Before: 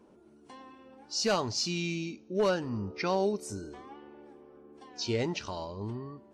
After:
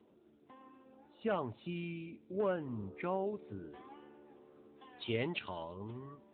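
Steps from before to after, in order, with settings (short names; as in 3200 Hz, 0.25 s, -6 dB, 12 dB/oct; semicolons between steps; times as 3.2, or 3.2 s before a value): high shelf 2300 Hz -7 dB, from 3.27 s +5.5 dB, from 4.28 s +10.5 dB; gain -5.5 dB; AMR-NB 10.2 kbps 8000 Hz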